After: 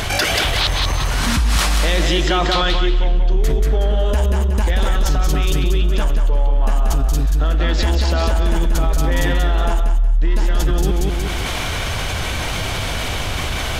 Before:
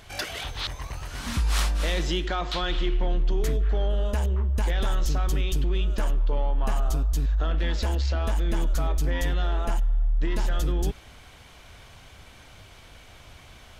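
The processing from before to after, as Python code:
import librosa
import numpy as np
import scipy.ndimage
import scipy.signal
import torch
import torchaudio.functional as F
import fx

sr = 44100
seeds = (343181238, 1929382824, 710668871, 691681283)

y = fx.echo_feedback(x, sr, ms=184, feedback_pct=30, wet_db=-4.0)
y = fx.env_flatten(y, sr, amount_pct=70)
y = y * librosa.db_to_amplitude(3.0)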